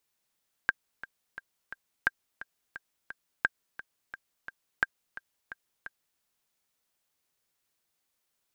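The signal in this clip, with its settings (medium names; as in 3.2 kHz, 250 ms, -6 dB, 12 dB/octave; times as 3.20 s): metronome 174 bpm, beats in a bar 4, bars 4, 1.59 kHz, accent 16.5 dB -10 dBFS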